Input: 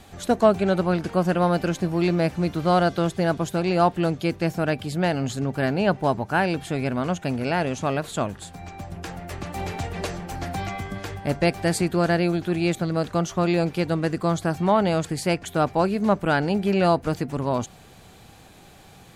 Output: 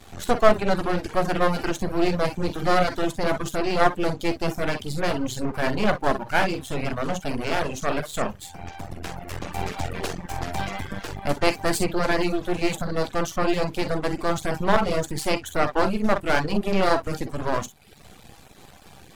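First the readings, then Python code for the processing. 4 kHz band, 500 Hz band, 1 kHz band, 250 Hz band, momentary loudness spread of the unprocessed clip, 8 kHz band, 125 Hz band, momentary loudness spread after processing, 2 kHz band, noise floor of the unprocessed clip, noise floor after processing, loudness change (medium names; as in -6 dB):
+2.0 dB, -1.0 dB, 0.0 dB, -3.5 dB, 11 LU, +1.5 dB, -5.5 dB, 9 LU, +2.0 dB, -49 dBFS, -48 dBFS, -1.5 dB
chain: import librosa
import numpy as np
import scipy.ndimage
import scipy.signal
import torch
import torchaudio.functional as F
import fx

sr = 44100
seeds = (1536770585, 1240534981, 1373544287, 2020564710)

y = fx.room_early_taps(x, sr, ms=(14, 47, 62), db=(-11.5, -9.0, -8.5))
y = np.maximum(y, 0.0)
y = fx.dereverb_blind(y, sr, rt60_s=0.62)
y = y * 10.0 ** (4.5 / 20.0)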